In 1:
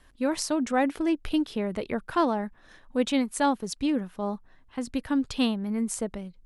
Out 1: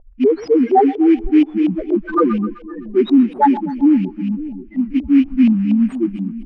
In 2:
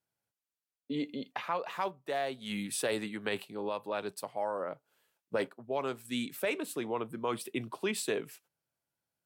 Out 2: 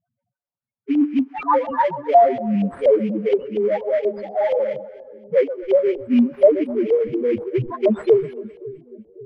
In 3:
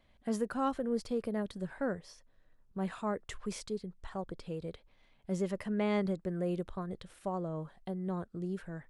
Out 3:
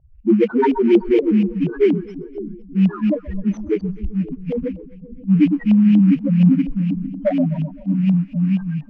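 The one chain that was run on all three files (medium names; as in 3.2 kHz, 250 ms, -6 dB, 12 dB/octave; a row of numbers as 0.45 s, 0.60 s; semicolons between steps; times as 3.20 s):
cycle switcher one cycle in 2, muted; loudest bins only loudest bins 1; in parallel at -11 dB: sample-rate reducer 2.7 kHz, jitter 20%; on the sum: two-band feedback delay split 410 Hz, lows 542 ms, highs 128 ms, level -14.5 dB; LFO low-pass saw up 4.2 Hz 690–3000 Hz; peak normalisation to -3 dBFS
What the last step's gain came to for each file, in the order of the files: +22.5 dB, +27.5 dB, +29.5 dB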